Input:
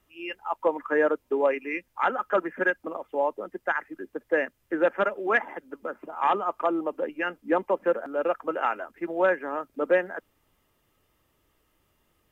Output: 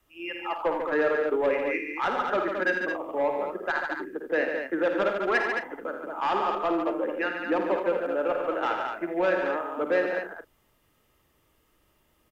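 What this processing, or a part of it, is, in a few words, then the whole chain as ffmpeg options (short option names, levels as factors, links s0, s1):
one-band saturation: -filter_complex "[0:a]acrossover=split=300|2200[s0][s1][s2];[s1]asoftclip=type=tanh:threshold=0.0841[s3];[s0][s3][s2]amix=inputs=3:normalize=0,adynamicequalizer=threshold=0.00282:dfrequency=170:dqfactor=1.9:tfrequency=170:tqfactor=1.9:attack=5:release=100:ratio=0.375:range=2.5:mode=cutabove:tftype=bell,aecho=1:1:53|81|97|144|218|255:0.376|0.355|0.188|0.473|0.473|0.106"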